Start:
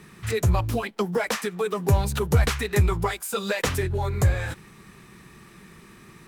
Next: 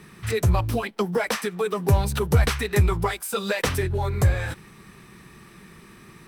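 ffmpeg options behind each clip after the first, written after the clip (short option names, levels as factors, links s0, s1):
-af "bandreject=f=6900:w=10,volume=1.12"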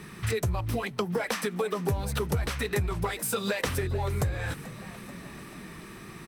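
-filter_complex "[0:a]acompressor=threshold=0.0355:ratio=6,asplit=7[s0][s1][s2][s3][s4][s5][s6];[s1]adelay=436,afreqshift=58,volume=0.141[s7];[s2]adelay=872,afreqshift=116,volume=0.0891[s8];[s3]adelay=1308,afreqshift=174,volume=0.0562[s9];[s4]adelay=1744,afreqshift=232,volume=0.0355[s10];[s5]adelay=2180,afreqshift=290,volume=0.0221[s11];[s6]adelay=2616,afreqshift=348,volume=0.014[s12];[s0][s7][s8][s9][s10][s11][s12]amix=inputs=7:normalize=0,volume=1.41"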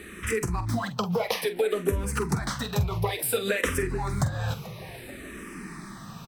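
-filter_complex "[0:a]asplit=2[s0][s1];[s1]adelay=46,volume=0.266[s2];[s0][s2]amix=inputs=2:normalize=0,asplit=2[s3][s4];[s4]afreqshift=-0.58[s5];[s3][s5]amix=inputs=2:normalize=1,volume=1.78"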